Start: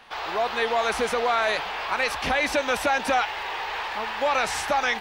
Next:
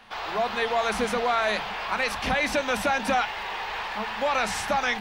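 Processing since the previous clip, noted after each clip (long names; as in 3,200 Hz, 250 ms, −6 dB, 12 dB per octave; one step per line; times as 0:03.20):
on a send at −15.5 dB: low shelf with overshoot 280 Hz +13.5 dB, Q 3 + convolution reverb, pre-delay 3 ms
on the sum: level −1.5 dB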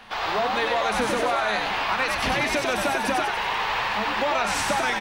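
downward compressor, threshold −27 dBFS, peak gain reduction 8 dB
echo with shifted repeats 95 ms, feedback 54%, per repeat +81 Hz, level −3.5 dB
level +5 dB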